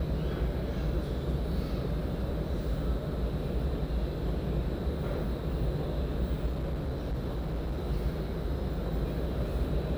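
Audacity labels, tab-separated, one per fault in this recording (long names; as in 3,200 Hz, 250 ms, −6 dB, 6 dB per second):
6.460000	7.880000	clipping −28.5 dBFS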